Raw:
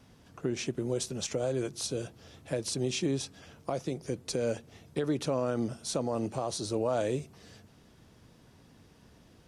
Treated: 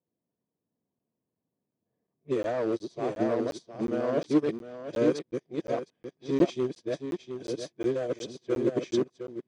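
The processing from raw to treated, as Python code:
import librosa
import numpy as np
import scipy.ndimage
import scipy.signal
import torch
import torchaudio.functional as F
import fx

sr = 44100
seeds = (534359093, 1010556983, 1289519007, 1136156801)

y = x[::-1].copy()
y = fx.notch_comb(y, sr, f0_hz=1400.0)
y = fx.clip_asym(y, sr, top_db=-29.0, bottom_db=-24.5)
y = fx.dynamic_eq(y, sr, hz=340.0, q=3.2, threshold_db=-50.0, ratio=4.0, max_db=5)
y = fx.quant_float(y, sr, bits=4)
y = fx.bandpass_edges(y, sr, low_hz=130.0, high_hz=4700.0)
y = fx.notch(y, sr, hz=830.0, q=12.0)
y = y + 10.0 ** (-3.5 / 20.0) * np.pad(y, (int(711 * sr / 1000.0), 0))[:len(y)]
y = fx.env_lowpass(y, sr, base_hz=750.0, full_db=-29.5)
y = fx.buffer_crackle(y, sr, first_s=0.99, period_s=0.36, block=512, kind='zero')
y = fx.upward_expand(y, sr, threshold_db=-48.0, expansion=2.5)
y = y * librosa.db_to_amplitude(9.0)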